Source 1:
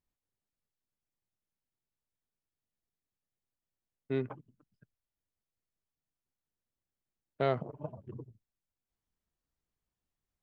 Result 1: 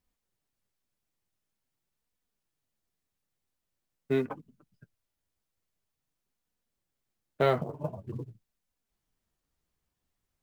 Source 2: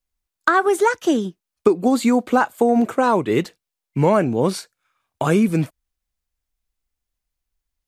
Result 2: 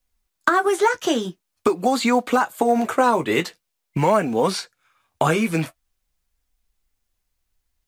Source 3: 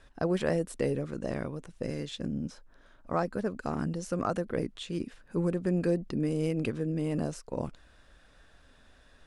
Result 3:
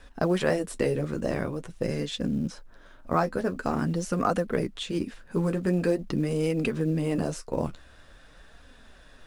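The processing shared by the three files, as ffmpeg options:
-filter_complex "[0:a]acrossover=split=620|5900[a][b][c];[a]acompressor=threshold=-30dB:ratio=4[d];[b]acompressor=threshold=-24dB:ratio=4[e];[c]acompressor=threshold=-45dB:ratio=4[f];[d][e][f]amix=inputs=3:normalize=0,flanger=delay=4:depth=8.9:regen=-37:speed=0.46:shape=sinusoidal,asplit=2[g][h];[h]acrusher=bits=5:mode=log:mix=0:aa=0.000001,volume=-11dB[i];[g][i]amix=inputs=2:normalize=0,volume=8dB"

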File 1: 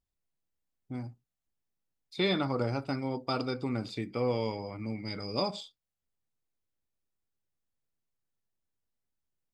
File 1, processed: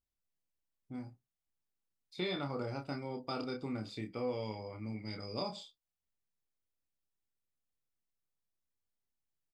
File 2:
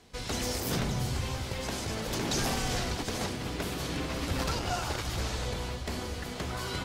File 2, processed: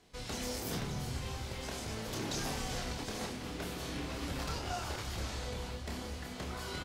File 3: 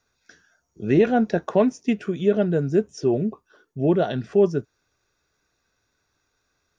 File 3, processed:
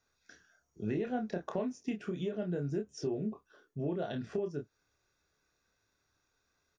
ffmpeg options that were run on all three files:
-filter_complex "[0:a]acompressor=threshold=-26dB:ratio=6,asplit=2[a][b];[b]adelay=28,volume=-5dB[c];[a][c]amix=inputs=2:normalize=0,volume=-7dB"

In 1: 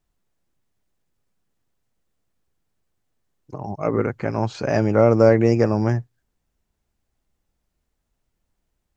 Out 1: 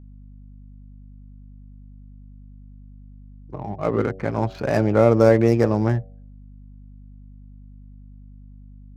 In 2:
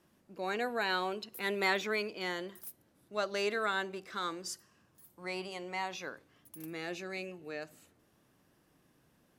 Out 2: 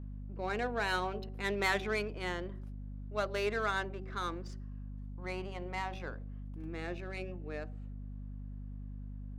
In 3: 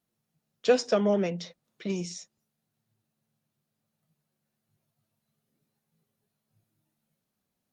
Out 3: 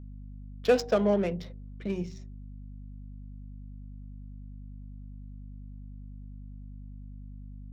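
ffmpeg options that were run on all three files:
-af "adynamicsmooth=sensitivity=5.5:basefreq=1.7k,bandreject=f=94.83:t=h:w=4,bandreject=f=189.66:t=h:w=4,bandreject=f=284.49:t=h:w=4,bandreject=f=379.32:t=h:w=4,bandreject=f=474.15:t=h:w=4,bandreject=f=568.98:t=h:w=4,bandreject=f=663.81:t=h:w=4,bandreject=f=758.64:t=h:w=4,aeval=exprs='val(0)+0.00794*(sin(2*PI*50*n/s)+sin(2*PI*2*50*n/s)/2+sin(2*PI*3*50*n/s)/3+sin(2*PI*4*50*n/s)/4+sin(2*PI*5*50*n/s)/5)':c=same"

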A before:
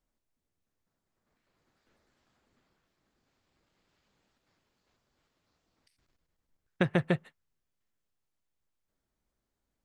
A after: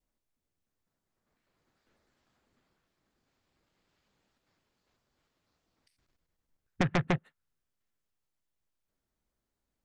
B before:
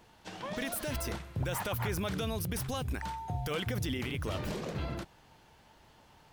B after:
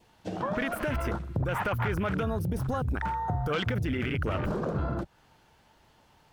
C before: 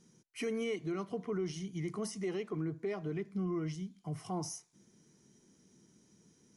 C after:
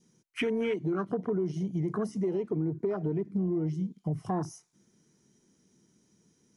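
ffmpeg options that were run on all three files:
-af "afwtdn=0.00794,adynamicequalizer=threshold=0.00126:dfrequency=1400:dqfactor=3.5:tfrequency=1400:tqfactor=3.5:attack=5:release=100:ratio=0.375:range=3:mode=boostabove:tftype=bell,aeval=exprs='0.316*sin(PI/2*3.55*val(0)/0.316)':c=same,acompressor=threshold=-31dB:ratio=2.5"

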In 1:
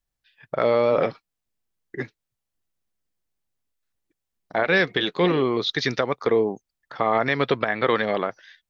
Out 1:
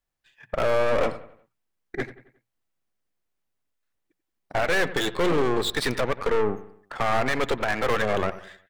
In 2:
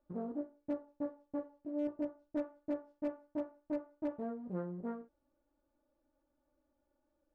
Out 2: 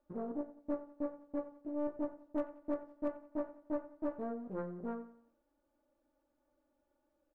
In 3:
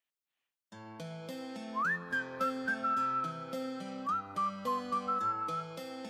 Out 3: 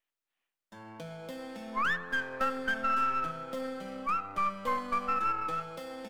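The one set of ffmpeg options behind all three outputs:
-filter_complex "[0:a]lowshelf=f=200:g=-5.5,bandreject=f=60:t=h:w=6,bandreject=f=120:t=h:w=6,bandreject=f=180:t=h:w=6,aeval=exprs='(tanh(22.4*val(0)+0.8)-tanh(0.8))/22.4':c=same,acrossover=split=2900[a][b];[a]aecho=1:1:90|180|270|360:0.178|0.0747|0.0314|0.0132[c];[b]aeval=exprs='max(val(0),0)':c=same[d];[c][d]amix=inputs=2:normalize=0,volume=7.5dB"

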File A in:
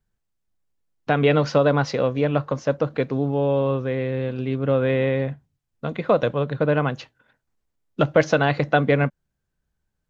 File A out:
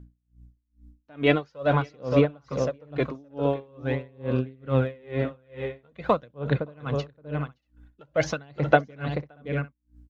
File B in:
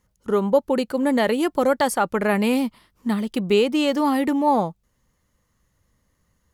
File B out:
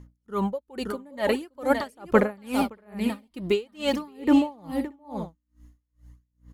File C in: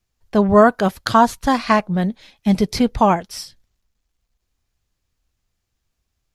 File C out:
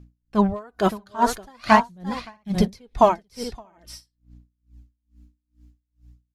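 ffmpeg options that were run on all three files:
-filter_complex "[0:a]aeval=exprs='val(0)+0.00316*(sin(2*PI*60*n/s)+sin(2*PI*2*60*n/s)/2+sin(2*PI*3*60*n/s)/3+sin(2*PI*4*60*n/s)/4+sin(2*PI*5*60*n/s)/5)':c=same,aphaser=in_gain=1:out_gain=1:delay=3.3:decay=0.49:speed=0.46:type=sinusoidal,asoftclip=type=hard:threshold=-1dB,asplit=2[a][b];[b]aecho=0:1:570|632:0.355|0.168[c];[a][c]amix=inputs=2:normalize=0,aeval=exprs='val(0)*pow(10,-33*(0.5-0.5*cos(2*PI*2.3*n/s))/20)':c=same"

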